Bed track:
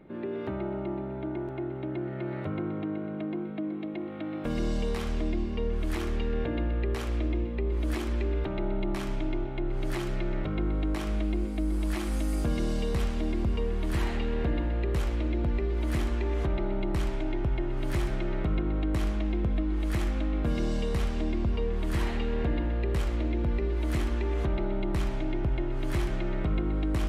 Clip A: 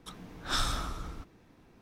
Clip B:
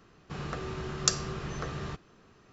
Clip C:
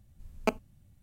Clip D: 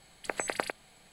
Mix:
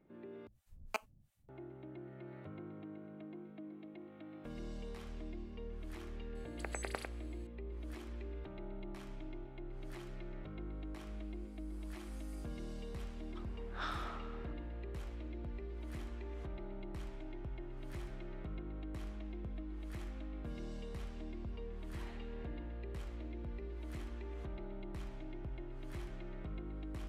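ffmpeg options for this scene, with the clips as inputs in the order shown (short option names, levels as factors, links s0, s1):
-filter_complex "[0:a]volume=0.15[s0];[3:a]acrossover=split=720[s1][s2];[s1]aeval=exprs='val(0)*(1-1/2+1/2*cos(2*PI*2.9*n/s))':c=same[s3];[s2]aeval=exprs='val(0)*(1-1/2-1/2*cos(2*PI*2.9*n/s))':c=same[s4];[s3][s4]amix=inputs=2:normalize=0[s5];[1:a]highpass=480,lowpass=2200[s6];[s0]asplit=2[s7][s8];[s7]atrim=end=0.474[s9];[s5]atrim=end=1.02,asetpts=PTS-STARTPTS,volume=0.596[s10];[s8]atrim=start=1.486[s11];[4:a]atrim=end=1.12,asetpts=PTS-STARTPTS,volume=0.316,afade=t=in:d=0.004:c=hsin,afade=t=out:st=1.116:d=0.004:c=hsin,adelay=6350[s12];[s6]atrim=end=1.81,asetpts=PTS-STARTPTS,volume=0.473,afade=t=in:d=0.004:c=hsin,afade=t=out:st=1.806:d=0.004:c=hsin,adelay=13290[s13];[s9][s10]acrossfade=d=0.004:c1=hsin:c2=hsin[s14];[s14][s11]acrossfade=d=0.004:c1=hsin:c2=hsin[s15];[s15][s12][s13]amix=inputs=3:normalize=0"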